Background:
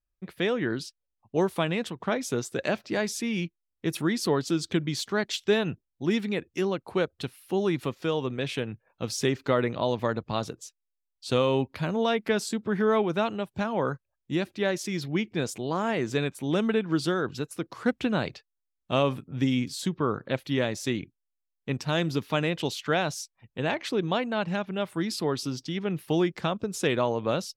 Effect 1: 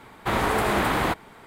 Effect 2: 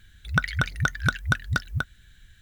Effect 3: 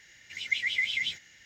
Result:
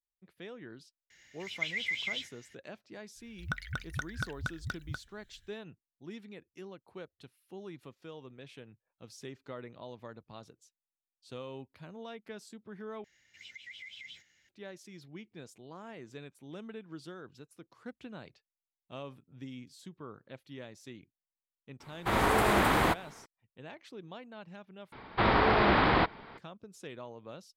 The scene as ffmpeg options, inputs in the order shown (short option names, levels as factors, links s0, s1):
-filter_complex "[3:a]asplit=2[s0][s1];[1:a]asplit=2[s2][s3];[0:a]volume=0.106[s4];[s1]acompressor=threshold=0.0355:ratio=10:attack=0.99:release=133:knee=1:detection=rms[s5];[s2]dynaudnorm=f=210:g=3:m=1.88[s6];[s3]aresample=11025,aresample=44100[s7];[s4]asplit=3[s8][s9][s10];[s8]atrim=end=13.044[s11];[s5]atrim=end=1.45,asetpts=PTS-STARTPTS,volume=0.224[s12];[s9]atrim=start=14.486:end=24.924[s13];[s7]atrim=end=1.46,asetpts=PTS-STARTPTS,volume=0.841[s14];[s10]atrim=start=26.376[s15];[s0]atrim=end=1.45,asetpts=PTS-STARTPTS,volume=0.531,afade=t=in:d=0.004:c=hsin,afade=t=out:st=1.446:d=0.004:c=hsin,adelay=1100[s16];[2:a]atrim=end=2.41,asetpts=PTS-STARTPTS,volume=0.224,afade=t=in:d=0.05,afade=t=out:st=2.36:d=0.05,adelay=3140[s17];[s6]atrim=end=1.46,asetpts=PTS-STARTPTS,volume=0.398,afade=t=in:d=0.004:c=hsin,afade=t=out:st=1.456:d=0.004:c=hsin,adelay=961380S[s18];[s11][s12]acrossfade=d=0.004:c1=hsin:c2=hsin[s19];[s19][s13]acrossfade=d=0.004:c1=hsin:c2=hsin[s20];[s20][s14]acrossfade=d=0.004:c1=hsin:c2=hsin[s21];[s21][s15]acrossfade=d=0.004:c1=hsin:c2=hsin[s22];[s22][s16][s17][s18]amix=inputs=4:normalize=0"